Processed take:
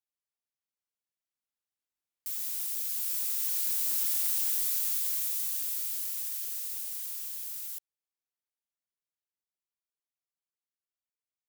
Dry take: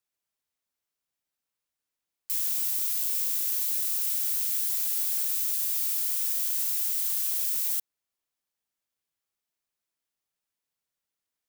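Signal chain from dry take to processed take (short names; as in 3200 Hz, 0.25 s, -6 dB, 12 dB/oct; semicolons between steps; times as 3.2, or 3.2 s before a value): Doppler pass-by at 4.23, 6 m/s, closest 6.5 m; wavefolder -20.5 dBFS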